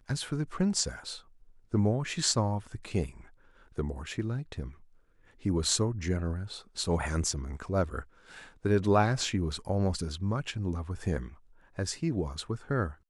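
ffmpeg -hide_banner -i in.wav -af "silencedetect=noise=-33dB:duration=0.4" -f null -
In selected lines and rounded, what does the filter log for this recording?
silence_start: 1.15
silence_end: 1.74 | silence_duration: 0.59
silence_start: 3.06
silence_end: 3.78 | silence_duration: 0.72
silence_start: 4.67
silence_end: 5.45 | silence_duration: 0.78
silence_start: 8.01
silence_end: 8.65 | silence_duration: 0.64
silence_start: 11.26
silence_end: 11.79 | silence_duration: 0.52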